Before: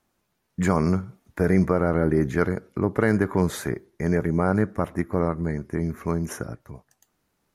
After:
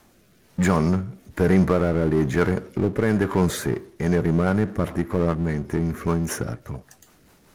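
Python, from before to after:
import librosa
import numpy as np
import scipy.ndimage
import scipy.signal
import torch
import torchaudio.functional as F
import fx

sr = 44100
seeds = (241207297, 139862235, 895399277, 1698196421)

y = fx.rotary_switch(x, sr, hz=1.1, then_hz=5.0, switch_at_s=3.3)
y = fx.power_curve(y, sr, exponent=0.7)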